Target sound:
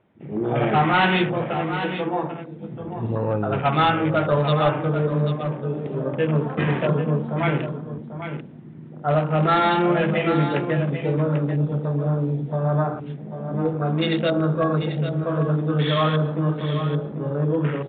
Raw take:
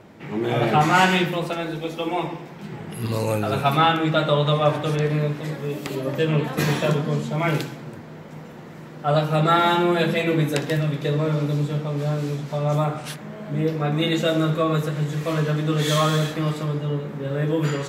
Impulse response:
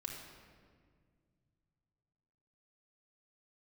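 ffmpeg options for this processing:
-af "afwtdn=0.0316,aresample=8000,volume=12.5dB,asoftclip=hard,volume=-12.5dB,aresample=44100,aecho=1:1:791:0.335"

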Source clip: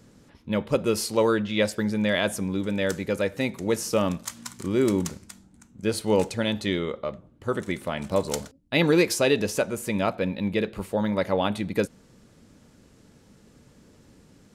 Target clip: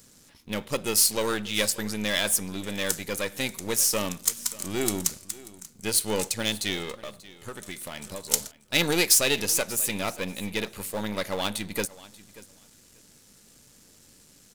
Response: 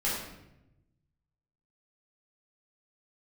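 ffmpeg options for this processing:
-filter_complex "[0:a]aeval=exprs='if(lt(val(0),0),0.447*val(0),val(0))':channel_layout=same,asettb=1/sr,asplit=3[link_01][link_02][link_03];[link_01]atrim=end=6.984[link_04];[link_02]atrim=start=6.98:end=8.31,asetpts=PTS-STARTPTS,afade=type=in:duration=0.004:curve=qsin,afade=type=out:start_time=1.326:duration=0.004:curve=qsin,acompressor=threshold=-32dB:ratio=5[link_05];[link_03]atrim=start=8.306[link_06];[link_04][link_05]acrossfade=duration=0.004:curve1=hsin:curve2=qsin[link_07];[link_07][link_06]acrossfade=duration=0.004:curve1=qsin:curve2=hsin,crystalizer=i=7.5:c=0,asplit=2[link_08][link_09];[link_09]aecho=0:1:586|1172:0.106|0.0169[link_10];[link_08][link_10]amix=inputs=2:normalize=0,volume=-5dB"

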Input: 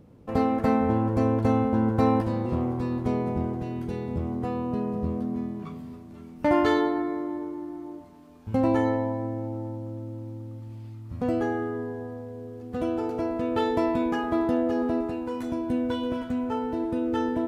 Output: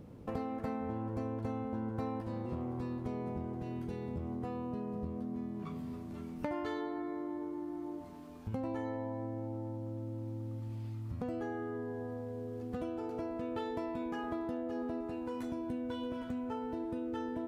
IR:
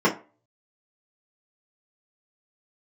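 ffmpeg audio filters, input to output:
-af "acompressor=threshold=-39dB:ratio=4,volume=1dB"

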